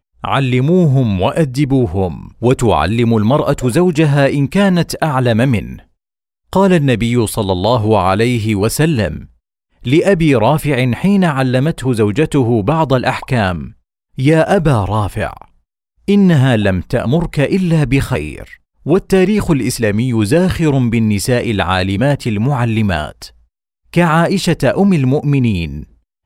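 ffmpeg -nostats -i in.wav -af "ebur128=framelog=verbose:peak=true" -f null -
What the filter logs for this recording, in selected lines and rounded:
Integrated loudness:
  I:         -13.7 LUFS
  Threshold: -24.3 LUFS
Loudness range:
  LRA:         1.9 LU
  Threshold: -34.3 LUFS
  LRA low:   -15.2 LUFS
  LRA high:  -13.3 LUFS
True peak:
  Peak:       -1.4 dBFS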